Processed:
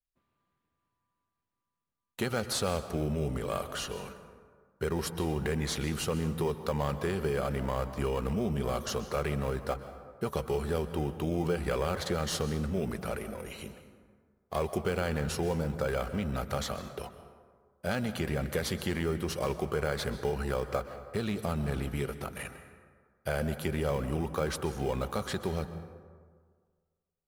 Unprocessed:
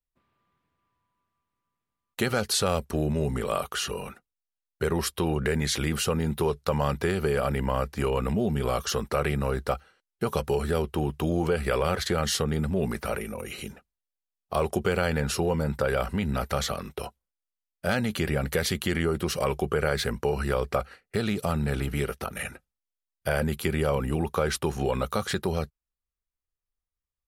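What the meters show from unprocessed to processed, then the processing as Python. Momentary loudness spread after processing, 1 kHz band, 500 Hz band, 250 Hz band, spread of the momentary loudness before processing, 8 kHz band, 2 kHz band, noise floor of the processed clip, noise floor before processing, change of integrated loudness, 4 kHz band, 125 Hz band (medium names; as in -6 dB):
8 LU, -5.5 dB, -5.0 dB, -4.5 dB, 7 LU, -6.5 dB, -6.5 dB, -85 dBFS, under -85 dBFS, -5.0 dB, -6.5 dB, -4.5 dB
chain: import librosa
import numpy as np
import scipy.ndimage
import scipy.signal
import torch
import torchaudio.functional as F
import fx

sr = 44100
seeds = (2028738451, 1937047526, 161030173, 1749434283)

p1 = fx.sample_hold(x, sr, seeds[0], rate_hz=2800.0, jitter_pct=0)
p2 = x + (p1 * 10.0 ** (-11.5 / 20.0))
p3 = fx.rev_plate(p2, sr, seeds[1], rt60_s=1.7, hf_ratio=0.45, predelay_ms=115, drr_db=11.0)
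y = p3 * 10.0 ** (-7.0 / 20.0)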